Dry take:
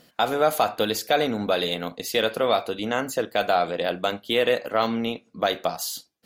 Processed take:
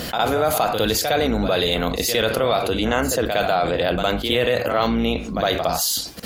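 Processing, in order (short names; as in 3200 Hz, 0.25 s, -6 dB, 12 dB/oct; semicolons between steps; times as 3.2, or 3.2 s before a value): octaver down 2 oct, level -5 dB; pre-echo 60 ms -13.5 dB; fast leveller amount 70%; gain -1 dB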